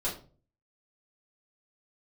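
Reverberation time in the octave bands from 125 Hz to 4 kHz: 0.65 s, 0.50 s, 0.45 s, 0.35 s, 0.30 s, 0.25 s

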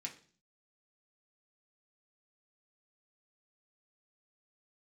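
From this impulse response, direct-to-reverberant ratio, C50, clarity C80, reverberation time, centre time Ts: -1.0 dB, 12.0 dB, 17.0 dB, 0.45 s, 14 ms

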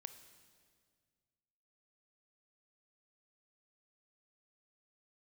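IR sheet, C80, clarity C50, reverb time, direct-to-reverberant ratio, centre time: 12.0 dB, 10.5 dB, 1.9 s, 9.5 dB, 16 ms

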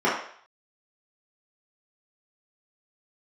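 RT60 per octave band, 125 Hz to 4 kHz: 0.35 s, 0.40 s, 0.55 s, 0.55 s, 0.60 s, 0.60 s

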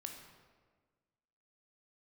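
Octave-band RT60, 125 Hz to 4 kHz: 1.7 s, 1.7 s, 1.6 s, 1.4 s, 1.2 s, 0.95 s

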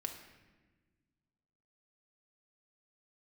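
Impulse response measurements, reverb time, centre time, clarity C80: 1.3 s, 25 ms, 9.0 dB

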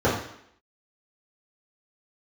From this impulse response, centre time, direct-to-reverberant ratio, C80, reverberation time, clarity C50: 39 ms, -10.5 dB, 8.0 dB, 0.70 s, 5.0 dB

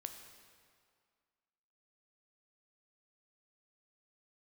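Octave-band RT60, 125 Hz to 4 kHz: 1.8 s, 2.0 s, 2.0 s, 2.1 s, 1.9 s, 1.7 s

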